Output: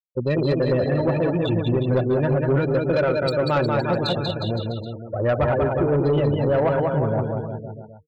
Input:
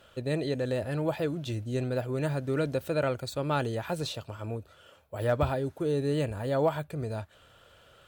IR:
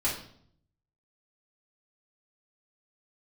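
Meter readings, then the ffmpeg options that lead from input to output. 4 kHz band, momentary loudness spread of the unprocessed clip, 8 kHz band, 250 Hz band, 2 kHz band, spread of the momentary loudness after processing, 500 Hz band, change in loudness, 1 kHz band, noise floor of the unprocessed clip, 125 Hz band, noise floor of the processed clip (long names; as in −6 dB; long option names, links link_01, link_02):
+8.5 dB, 10 LU, can't be measured, +9.5 dB, +8.5 dB, 7 LU, +9.5 dB, +9.5 dB, +9.0 dB, −59 dBFS, +10.0 dB, −40 dBFS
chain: -filter_complex "[0:a]afftfilt=real='re*gte(hypot(re,im),0.0282)':imag='im*gte(hypot(re,im),0.0282)':win_size=1024:overlap=0.75,aecho=1:1:5.4:0.31,bandreject=frequency=153.3:width_type=h:width=4,bandreject=frequency=306.6:width_type=h:width=4,bandreject=frequency=459.9:width_type=h:width=4,asplit=2[link_01][link_02];[link_02]alimiter=level_in=1dB:limit=-24dB:level=0:latency=1:release=395,volume=-1dB,volume=2dB[link_03];[link_01][link_03]amix=inputs=2:normalize=0,aecho=1:1:190|361|514.9|653.4|778.1:0.631|0.398|0.251|0.158|0.1,aeval=exprs='0.335*(cos(1*acos(clip(val(0)/0.335,-1,1)))-cos(1*PI/2))+0.0473*(cos(5*acos(clip(val(0)/0.335,-1,1)))-cos(5*PI/2))':channel_layout=same"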